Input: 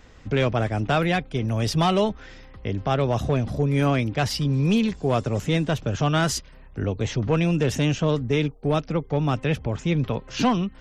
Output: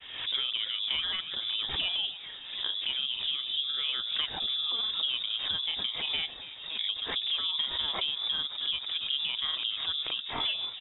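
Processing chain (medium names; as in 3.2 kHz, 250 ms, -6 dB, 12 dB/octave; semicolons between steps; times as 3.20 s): high-pass 210 Hz 6 dB/octave; peaking EQ 490 Hz +8 dB 2.6 oct; compression 6:1, threshold -23 dBFS, peak gain reduction 12 dB; granulator, spray 26 ms, pitch spread up and down by 0 st; on a send: frequency-shifting echo 283 ms, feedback 59%, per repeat -110 Hz, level -13.5 dB; on the sum: frequency inversion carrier 3.7 kHz; swell ahead of each attack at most 62 dB/s; trim -5 dB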